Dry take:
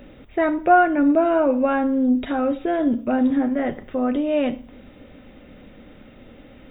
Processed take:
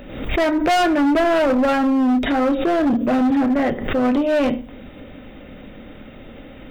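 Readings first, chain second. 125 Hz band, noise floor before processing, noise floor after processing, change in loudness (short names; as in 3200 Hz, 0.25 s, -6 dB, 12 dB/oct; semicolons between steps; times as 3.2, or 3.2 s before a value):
+9.0 dB, -47 dBFS, -40 dBFS, +2.0 dB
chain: notches 60/120/180/240/300/360/420/480/540 Hz; overloaded stage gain 21 dB; backwards sustainer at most 63 dB/s; gain +6.5 dB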